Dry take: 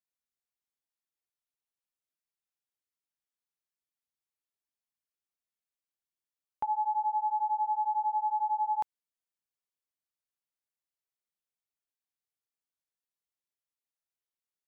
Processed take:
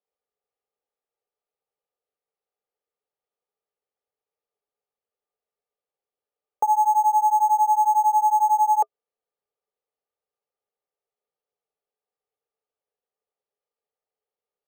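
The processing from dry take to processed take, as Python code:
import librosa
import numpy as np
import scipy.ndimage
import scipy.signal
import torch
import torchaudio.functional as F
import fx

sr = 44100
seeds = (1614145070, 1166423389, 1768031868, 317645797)

y = np.repeat(scipy.signal.resample_poly(x, 1, 6), 6)[:len(x)]
y = fx.band_shelf(y, sr, hz=630.0, db=13.0, octaves=1.1)
y = fx.notch(y, sr, hz=660.0, q=15.0)
y = fx.small_body(y, sr, hz=(420.0, 1200.0), ring_ms=60, db=15)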